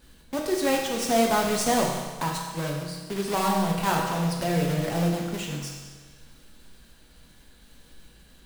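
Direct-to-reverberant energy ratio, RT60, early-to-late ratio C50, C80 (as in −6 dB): −1.0 dB, 1.4 s, 2.5 dB, 4.0 dB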